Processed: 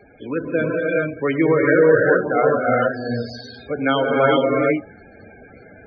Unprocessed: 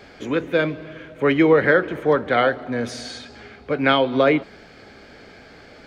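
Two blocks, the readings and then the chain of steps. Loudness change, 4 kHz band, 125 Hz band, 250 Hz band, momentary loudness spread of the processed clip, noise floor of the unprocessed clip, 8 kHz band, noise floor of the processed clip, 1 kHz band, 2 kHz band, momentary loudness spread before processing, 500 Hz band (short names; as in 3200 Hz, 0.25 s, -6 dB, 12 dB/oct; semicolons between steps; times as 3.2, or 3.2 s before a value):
+1.0 dB, -3.5 dB, +3.0 dB, +1.0 dB, 13 LU, -46 dBFS, under -15 dB, -46 dBFS, +1.5 dB, +1.0 dB, 17 LU, +3.0 dB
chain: non-linear reverb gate 0.44 s rising, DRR -3.5 dB; loudest bins only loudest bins 32; gain -2.5 dB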